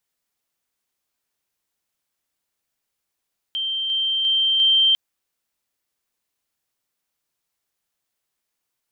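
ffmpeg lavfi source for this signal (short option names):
-f lavfi -i "aevalsrc='pow(10,(-22+3*floor(t/0.35))/20)*sin(2*PI*3140*t)':d=1.4:s=44100"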